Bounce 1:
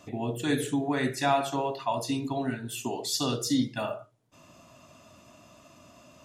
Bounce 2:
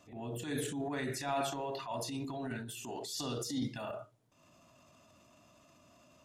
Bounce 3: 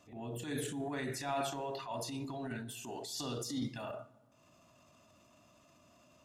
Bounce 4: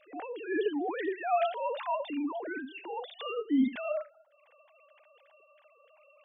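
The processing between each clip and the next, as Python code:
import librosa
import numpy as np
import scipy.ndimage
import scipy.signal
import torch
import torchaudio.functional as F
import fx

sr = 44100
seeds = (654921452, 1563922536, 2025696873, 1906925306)

y1 = fx.transient(x, sr, attack_db=-8, sustain_db=8)
y1 = y1 * 10.0 ** (-9.0 / 20.0)
y2 = fx.rev_plate(y1, sr, seeds[0], rt60_s=1.6, hf_ratio=0.55, predelay_ms=0, drr_db=18.0)
y2 = y2 * 10.0 ** (-1.5 / 20.0)
y3 = fx.sine_speech(y2, sr)
y3 = y3 * 10.0 ** (7.5 / 20.0)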